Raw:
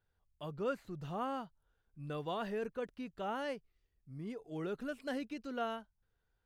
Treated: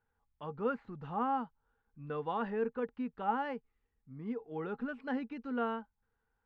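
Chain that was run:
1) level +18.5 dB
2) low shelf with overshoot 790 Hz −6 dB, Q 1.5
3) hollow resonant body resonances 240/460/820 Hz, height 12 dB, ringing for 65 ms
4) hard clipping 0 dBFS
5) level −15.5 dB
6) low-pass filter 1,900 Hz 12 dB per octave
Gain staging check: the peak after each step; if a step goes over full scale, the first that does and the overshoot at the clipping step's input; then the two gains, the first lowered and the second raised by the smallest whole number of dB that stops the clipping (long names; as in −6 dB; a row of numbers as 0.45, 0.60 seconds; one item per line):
−5.5, −9.0, −5.0, −5.0, −20.5, −20.5 dBFS
no step passes full scale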